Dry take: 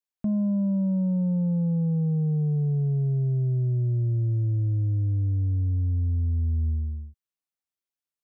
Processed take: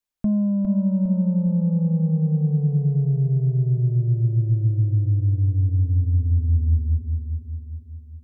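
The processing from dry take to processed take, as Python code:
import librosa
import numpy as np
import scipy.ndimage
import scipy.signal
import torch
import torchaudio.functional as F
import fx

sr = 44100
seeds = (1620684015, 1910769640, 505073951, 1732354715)

y = fx.low_shelf(x, sr, hz=76.0, db=11.5)
y = fx.rider(y, sr, range_db=10, speed_s=0.5)
y = fx.echo_feedback(y, sr, ms=406, feedback_pct=49, wet_db=-6.0)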